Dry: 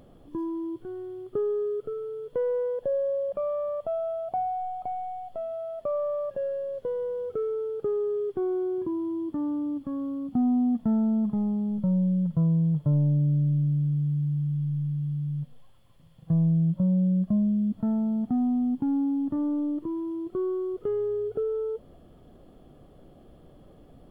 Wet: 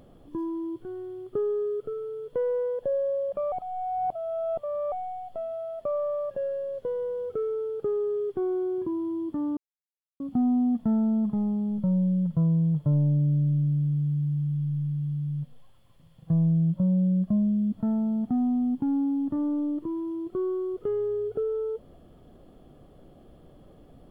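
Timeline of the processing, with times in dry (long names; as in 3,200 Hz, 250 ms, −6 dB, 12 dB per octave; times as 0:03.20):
0:03.52–0:04.92: reverse
0:09.57–0:10.20: silence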